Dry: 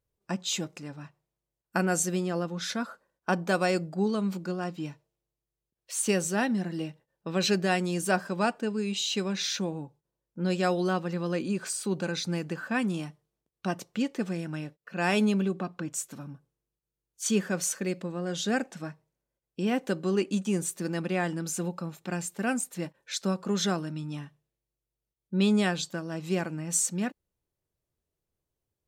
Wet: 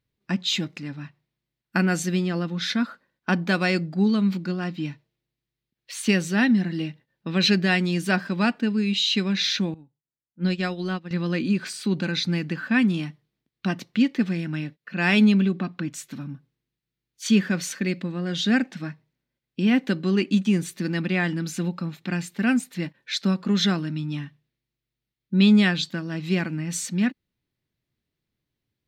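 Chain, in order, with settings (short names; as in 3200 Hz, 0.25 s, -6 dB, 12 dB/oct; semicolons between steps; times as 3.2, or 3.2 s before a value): ten-band EQ 125 Hz +7 dB, 250 Hz +11 dB, 500 Hz -3 dB, 2000 Hz +10 dB, 4000 Hz +10 dB, 8000 Hz -6 dB; 9.74–11.11 upward expander 2.5:1, over -30 dBFS; gain -2 dB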